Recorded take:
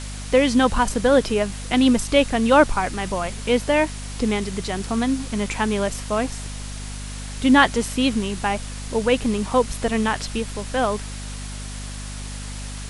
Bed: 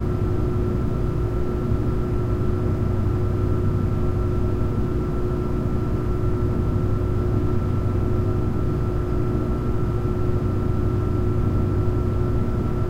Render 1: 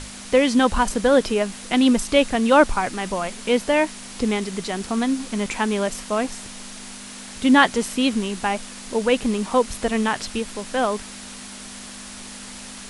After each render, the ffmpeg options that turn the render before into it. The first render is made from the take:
-af "bandreject=f=50:t=h:w=6,bandreject=f=100:t=h:w=6,bandreject=f=150:t=h:w=6"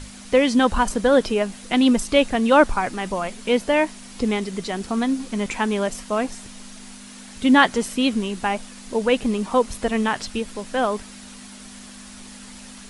-af "afftdn=nr=6:nf=-38"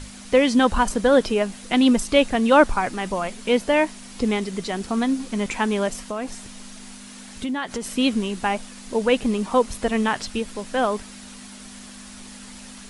-filter_complex "[0:a]asettb=1/sr,asplit=3[s0][s1][s2];[s0]atrim=end=6.024[s3];[s1]atrim=start=6.02:end=7.92,asetpts=PTS-STARTPTS,afade=t=in:d=0.004:c=qsin,afade=t=out:st=1.896:d=0.004:c=qsin,acompressor=threshold=0.0631:ratio=6:attack=3.2:release=140:knee=1:detection=peak[s4];[s2]atrim=start=7.916[s5];[s3][s4]acrossfade=d=0.004:c1=hsin:c2=qsin[s6];[s6][s5]acrossfade=d=0.004:c1=qsin:c2=hsin"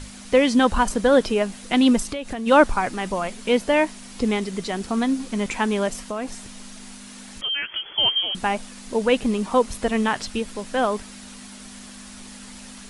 -filter_complex "[0:a]asplit=3[s0][s1][s2];[s0]afade=t=out:st=2.02:d=0.02[s3];[s1]acompressor=threshold=0.0562:ratio=10:attack=3.2:release=140:knee=1:detection=peak,afade=t=in:st=2.02:d=0.02,afade=t=out:st=2.46:d=0.02[s4];[s2]afade=t=in:st=2.46:d=0.02[s5];[s3][s4][s5]amix=inputs=3:normalize=0,asettb=1/sr,asplit=3[s6][s7][s8];[s6]atrim=end=7.414[s9];[s7]atrim=start=7.41:end=8.35,asetpts=PTS-STARTPTS,afade=t=in:d=0.004:c=qsin,afade=t=out:st=0.936:d=0.004:c=qsin,lowpass=f=2900:t=q:w=0.5098,lowpass=f=2900:t=q:w=0.6013,lowpass=f=2900:t=q:w=0.9,lowpass=f=2900:t=q:w=2.563,afreqshift=-3400[s10];[s8]atrim=start=8.346[s11];[s9][s10]acrossfade=d=0.004:c1=hsin:c2=qsin[s12];[s12][s11]acrossfade=d=0.004:c1=qsin:c2=hsin"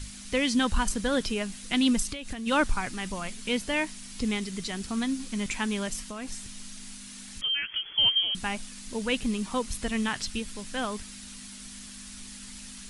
-af "equalizer=f=600:t=o:w=2.6:g=-13.5"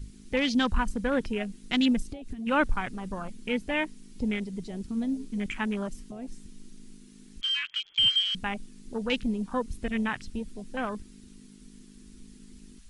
-af "afwtdn=0.02"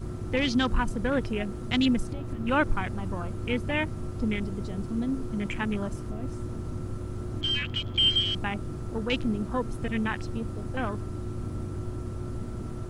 -filter_complex "[1:a]volume=0.224[s0];[0:a][s0]amix=inputs=2:normalize=0"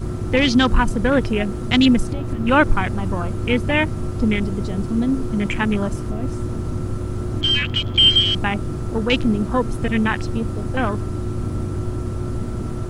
-af "volume=2.99"

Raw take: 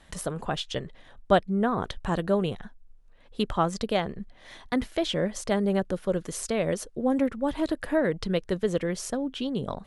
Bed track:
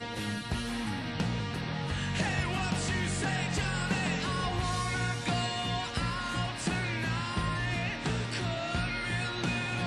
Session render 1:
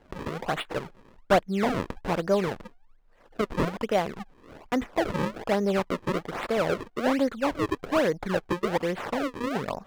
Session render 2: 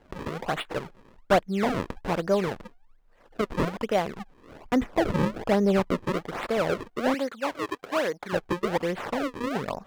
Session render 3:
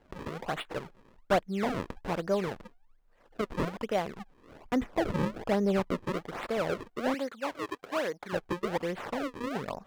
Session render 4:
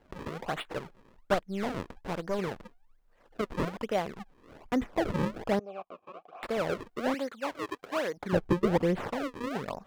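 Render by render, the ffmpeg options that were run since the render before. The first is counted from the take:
-filter_complex "[0:a]acrusher=samples=35:mix=1:aa=0.000001:lfo=1:lforange=56:lforate=1.2,asplit=2[s0][s1];[s1]highpass=f=720:p=1,volume=3.98,asoftclip=type=tanh:threshold=0.376[s2];[s0][s2]amix=inputs=2:normalize=0,lowpass=f=1300:p=1,volume=0.501"
-filter_complex "[0:a]asettb=1/sr,asplit=3[s0][s1][s2];[s0]atrim=end=4.614[s3];[s1]atrim=start=4.61:end=6.05,asetpts=PTS-STARTPTS,afade=t=in:d=0.004:c=qsin,afade=t=out:st=1.436:d=0.004:c=qsin,lowshelf=f=360:g=6[s4];[s2]atrim=start=6.046[s5];[s3][s4]acrossfade=d=0.004:c1=hsin:c2=qsin[s6];[s6][s5]acrossfade=d=0.004:c1=qsin:c2=hsin,asettb=1/sr,asplit=3[s7][s8][s9];[s7]atrim=end=7.144[s10];[s8]atrim=start=7.14:end=8.33,asetpts=PTS-STARTPTS,afade=t=in:d=0.004:c=qsin,afade=t=out:st=1.186:d=0.004:c=qsin,highpass=f=540:p=1[s11];[s9]atrim=start=8.326[s12];[s10][s11]acrossfade=d=0.004:c1=hsin:c2=qsin[s13];[s13][s12]acrossfade=d=0.004:c1=qsin:c2=hsin"
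-af "volume=0.562"
-filter_complex "[0:a]asettb=1/sr,asplit=3[s0][s1][s2];[s0]atrim=end=1.344[s3];[s1]atrim=start=1.34:end=2.39,asetpts=PTS-STARTPTS,afade=t=in:d=0.004:c=qsin,afade=t=out:st=1.046:d=0.004:c=qsin,aeval=exprs='(tanh(15.8*val(0)+0.6)-tanh(0.6))/15.8':c=same[s4];[s2]atrim=start=2.386[s5];[s3][s4]acrossfade=d=0.004:c1=hsin:c2=qsin[s6];[s6][s5]acrossfade=d=0.004:c1=qsin:c2=hsin,asettb=1/sr,asplit=3[s7][s8][s9];[s7]atrim=end=5.594[s10];[s8]atrim=start=5.59:end=6.43,asetpts=PTS-STARTPTS,afade=t=in:d=0.004:c=qsin,afade=t=out:st=0.836:d=0.004:c=qsin,asplit=3[s11][s12][s13];[s11]bandpass=f=730:t=q:w=8,volume=1[s14];[s12]bandpass=f=1090:t=q:w=8,volume=0.501[s15];[s13]bandpass=f=2440:t=q:w=8,volume=0.355[s16];[s14][s15][s16]amix=inputs=3:normalize=0[s17];[s9]atrim=start=6.426[s18];[s10][s17]acrossfade=d=0.004:c1=hsin:c2=qsin[s19];[s19][s18]acrossfade=d=0.004:c1=qsin:c2=hsin,asettb=1/sr,asplit=3[s20][s21][s22];[s20]atrim=end=8.174[s23];[s21]atrim=start=8.17:end=9.08,asetpts=PTS-STARTPTS,afade=t=in:d=0.004:c=qsin,afade=t=out:st=0.906:d=0.004:c=qsin,lowshelf=f=440:g=11.5[s24];[s22]atrim=start=9.076[s25];[s23][s24]acrossfade=d=0.004:c1=hsin:c2=qsin[s26];[s26][s25]acrossfade=d=0.004:c1=qsin:c2=hsin"

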